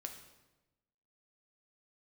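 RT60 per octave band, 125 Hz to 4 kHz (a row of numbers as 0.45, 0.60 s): 1.3, 1.2, 1.1, 1.0, 0.90, 0.85 s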